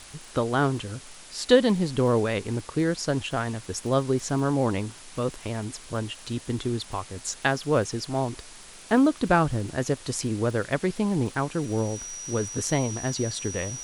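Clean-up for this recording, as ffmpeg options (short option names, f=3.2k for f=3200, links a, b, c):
-af "adeclick=t=4,bandreject=f=5.8k:w=30,afftdn=nr=25:nf=-45"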